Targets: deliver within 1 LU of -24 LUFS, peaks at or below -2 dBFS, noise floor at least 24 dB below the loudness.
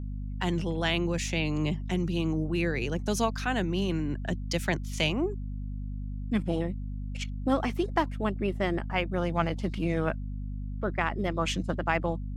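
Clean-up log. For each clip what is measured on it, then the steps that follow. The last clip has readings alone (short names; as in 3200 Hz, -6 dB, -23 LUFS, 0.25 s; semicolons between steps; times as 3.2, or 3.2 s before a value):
hum 50 Hz; harmonics up to 250 Hz; hum level -32 dBFS; loudness -30.0 LUFS; peak -10.5 dBFS; loudness target -24.0 LUFS
-> de-hum 50 Hz, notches 5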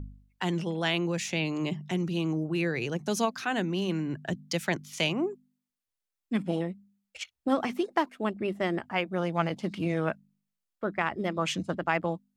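hum none; loudness -30.5 LUFS; peak -11.0 dBFS; loudness target -24.0 LUFS
-> gain +6.5 dB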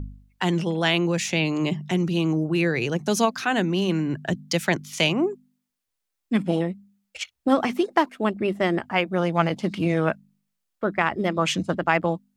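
loudness -24.0 LUFS; peak -4.5 dBFS; noise floor -81 dBFS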